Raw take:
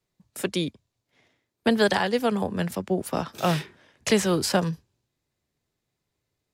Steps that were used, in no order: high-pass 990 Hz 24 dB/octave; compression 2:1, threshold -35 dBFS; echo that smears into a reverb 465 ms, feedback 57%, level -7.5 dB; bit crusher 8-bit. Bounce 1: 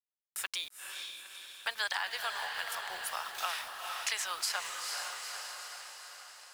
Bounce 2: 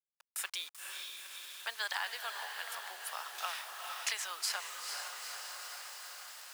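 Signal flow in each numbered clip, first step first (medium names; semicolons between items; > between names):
high-pass > bit crusher > echo that smears into a reverb > compression; echo that smears into a reverb > compression > bit crusher > high-pass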